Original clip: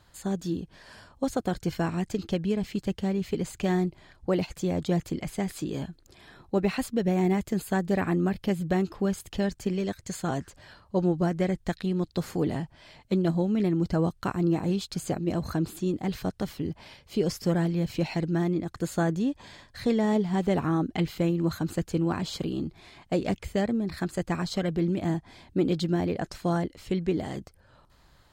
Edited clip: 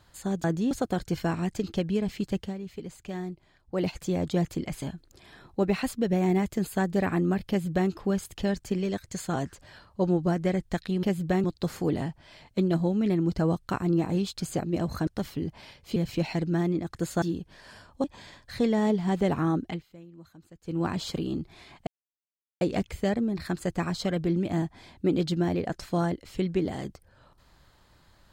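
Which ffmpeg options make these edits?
ffmpeg -i in.wav -filter_complex "[0:a]asplit=15[link_01][link_02][link_03][link_04][link_05][link_06][link_07][link_08][link_09][link_10][link_11][link_12][link_13][link_14][link_15];[link_01]atrim=end=0.442[link_16];[link_02]atrim=start=19.028:end=19.302[link_17];[link_03]atrim=start=1.258:end=3.09,asetpts=PTS-STARTPTS,afade=type=out:start_time=1.702:duration=0.13:silence=0.334965[link_18];[link_04]atrim=start=3.09:end=4.26,asetpts=PTS-STARTPTS,volume=-9.5dB[link_19];[link_05]atrim=start=4.26:end=5.372,asetpts=PTS-STARTPTS,afade=type=in:duration=0.13:silence=0.334965[link_20];[link_06]atrim=start=5.768:end=11.982[link_21];[link_07]atrim=start=8.438:end=8.852[link_22];[link_08]atrim=start=11.978:end=15.612[link_23];[link_09]atrim=start=16.298:end=17.192[link_24];[link_10]atrim=start=17.768:end=19.032[link_25];[link_11]atrim=start=0.438:end=1.262[link_26];[link_12]atrim=start=19.298:end=21.09,asetpts=PTS-STARTPTS,afade=type=out:start_time=1.572:duration=0.22:silence=0.0749894[link_27];[link_13]atrim=start=21.09:end=21.88,asetpts=PTS-STARTPTS,volume=-22.5dB[link_28];[link_14]atrim=start=21.88:end=23.13,asetpts=PTS-STARTPTS,afade=type=in:duration=0.22:silence=0.0749894,afade=type=out:start_time=1.246:duration=0.004:curve=hsin,apad=pad_dur=0.74[link_29];[link_15]atrim=start=23.13,asetpts=PTS-STARTPTS,afade=type=in:duration=0.004:curve=hsin[link_30];[link_16][link_17]acrossfade=duration=0.004:curve1=hsin:curve2=hsin[link_31];[link_18][link_19][link_20]concat=n=3:v=0:a=1[link_32];[link_31][link_32]acrossfade=duration=0.004:curve1=hsin:curve2=hsin[link_33];[link_33][link_21]acrossfade=duration=0.004:curve1=hsin:curve2=hsin[link_34];[link_34][link_22]acrossfade=duration=0.004:curve1=hsin:curve2=hsin[link_35];[link_35][link_23]acrossfade=duration=0.004:curve1=hsin:curve2=hsin[link_36];[link_36][link_24]acrossfade=duration=0.004:curve1=hsin:curve2=hsin[link_37];[link_37][link_25]acrossfade=duration=0.004:curve1=hsin:curve2=hsin[link_38];[link_38][link_26]acrossfade=duration=0.004:curve1=hsin:curve2=hsin[link_39];[link_27][link_28][link_29][link_30]concat=n=4:v=0:a=1[link_40];[link_39][link_40]acrossfade=duration=0.004:curve1=hsin:curve2=hsin" out.wav

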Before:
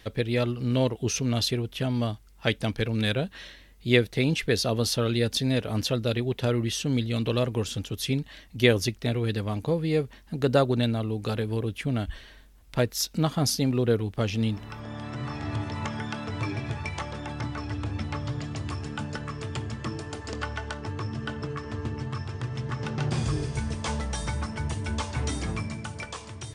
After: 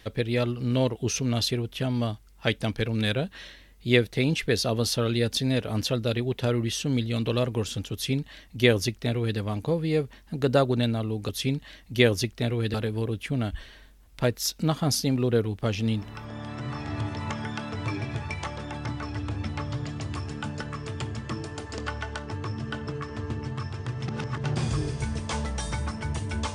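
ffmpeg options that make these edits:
ffmpeg -i in.wav -filter_complex "[0:a]asplit=5[link_01][link_02][link_03][link_04][link_05];[link_01]atrim=end=11.292[link_06];[link_02]atrim=start=7.928:end=9.382[link_07];[link_03]atrim=start=11.288:end=22.632[link_08];[link_04]atrim=start=22.628:end=22.992,asetpts=PTS-STARTPTS,areverse[link_09];[link_05]atrim=start=22.988[link_10];[link_06][link_07]acrossfade=duration=0.004:curve1=hsin:curve2=hsin[link_11];[link_11][link_08]acrossfade=duration=0.004:curve1=hsin:curve2=hsin[link_12];[link_12][link_09]acrossfade=duration=0.004:curve1=hsin:curve2=hsin[link_13];[link_13][link_10]acrossfade=duration=0.004:curve1=hsin:curve2=hsin" out.wav

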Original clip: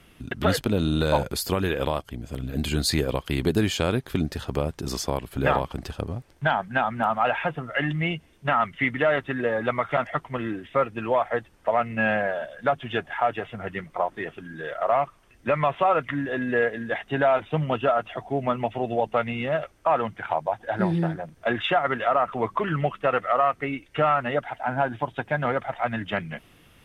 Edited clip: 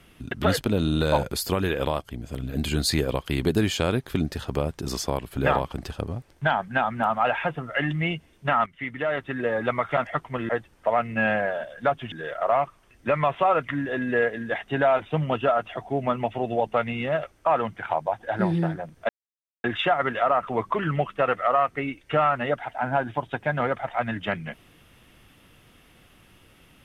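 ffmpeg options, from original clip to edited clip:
ffmpeg -i in.wav -filter_complex "[0:a]asplit=5[link_01][link_02][link_03][link_04][link_05];[link_01]atrim=end=8.66,asetpts=PTS-STARTPTS,afade=type=out:start_time=8.656:duration=0.004:curve=hsin:silence=0.223872[link_06];[link_02]atrim=start=8.66:end=10.492,asetpts=PTS-STARTPTS,afade=type=in:duration=0.91:silence=0.223872[link_07];[link_03]atrim=start=11.298:end=12.932[link_08];[link_04]atrim=start=14.518:end=21.49,asetpts=PTS-STARTPTS,afade=type=out:start_time=6.968:duration=0.004:curve=hsin,apad=pad_dur=0.55[link_09];[link_05]atrim=start=21.49,asetpts=PTS-STARTPTS,afade=type=in:duration=0.004:curve=hsin[link_10];[link_06][link_07]concat=n=2:v=0:a=1[link_11];[link_11][link_08]acrossfade=duration=0.004:curve1=hsin:curve2=hsin[link_12];[link_09][link_10]concat=n=2:v=0:a=1[link_13];[link_12][link_13]acrossfade=duration=0.004:curve1=hsin:curve2=hsin" out.wav

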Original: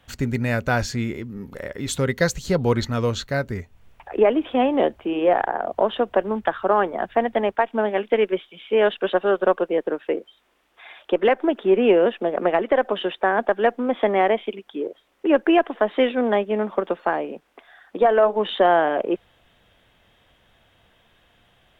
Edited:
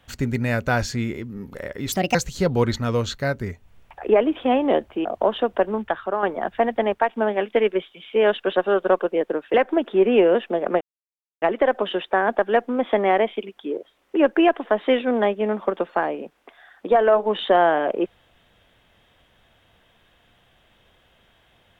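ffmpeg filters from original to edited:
ffmpeg -i in.wav -filter_complex "[0:a]asplit=7[link_01][link_02][link_03][link_04][link_05][link_06][link_07];[link_01]atrim=end=1.924[link_08];[link_02]atrim=start=1.92:end=2.24,asetpts=PTS-STARTPTS,asetrate=61740,aresample=44100[link_09];[link_03]atrim=start=2.236:end=5.142[link_10];[link_04]atrim=start=5.618:end=6.8,asetpts=PTS-STARTPTS,afade=type=out:start_time=0.662:duration=0.52:silence=0.421697[link_11];[link_05]atrim=start=6.8:end=10.112,asetpts=PTS-STARTPTS,afade=type=in:duration=0.004:curve=hsin:silence=0.421697[link_12];[link_06]atrim=start=11.248:end=12.52,asetpts=PTS-STARTPTS,afade=type=out:start_time=1.268:duration=0.004:curve=hsin,apad=pad_dur=0.61[link_13];[link_07]atrim=start=12.52,asetpts=PTS-STARTPTS,afade=type=in:duration=0.004:curve=hsin[link_14];[link_08][link_09]acrossfade=duration=0.004:curve1=hsin:curve2=hsin[link_15];[link_15][link_10]acrossfade=duration=0.004:curve1=hsin:curve2=hsin[link_16];[link_11][link_12]concat=n=2:v=0:a=1[link_17];[link_16][link_17]acrossfade=duration=0.004:curve1=hsin:curve2=hsin[link_18];[link_13][link_14]concat=n=2:v=0:a=1[link_19];[link_18][link_19]acrossfade=duration=0.004:curve1=hsin:curve2=hsin" out.wav

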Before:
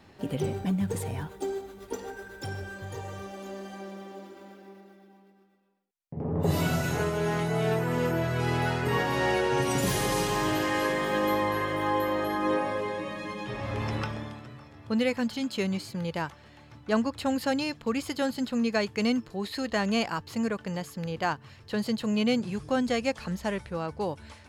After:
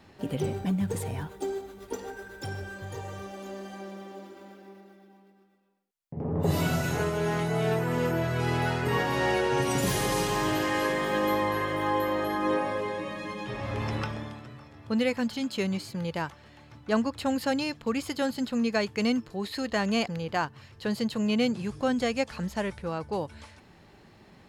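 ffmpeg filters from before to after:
ffmpeg -i in.wav -filter_complex "[0:a]asplit=2[link_01][link_02];[link_01]atrim=end=20.072[link_03];[link_02]atrim=start=20.948[link_04];[link_03][link_04]acrossfade=duration=0.004:curve1=hsin:curve2=hsin" out.wav

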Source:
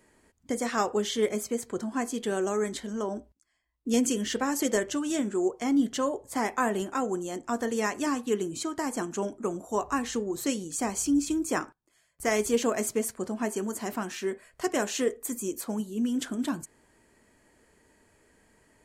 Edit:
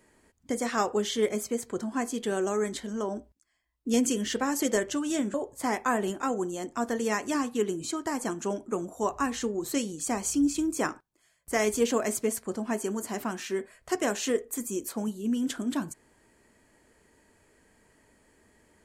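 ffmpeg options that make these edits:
ffmpeg -i in.wav -filter_complex "[0:a]asplit=2[link_01][link_02];[link_01]atrim=end=5.342[link_03];[link_02]atrim=start=6.058[link_04];[link_03][link_04]acrossfade=duration=0.004:curve1=hsin:curve2=hsin" out.wav

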